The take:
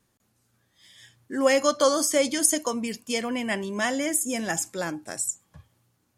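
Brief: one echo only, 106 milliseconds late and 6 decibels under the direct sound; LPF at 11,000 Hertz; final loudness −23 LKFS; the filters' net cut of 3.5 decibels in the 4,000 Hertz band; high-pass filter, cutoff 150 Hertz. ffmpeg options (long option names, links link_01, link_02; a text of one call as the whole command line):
ffmpeg -i in.wav -af "highpass=150,lowpass=11000,equalizer=frequency=4000:width_type=o:gain=-5,aecho=1:1:106:0.501,volume=2dB" out.wav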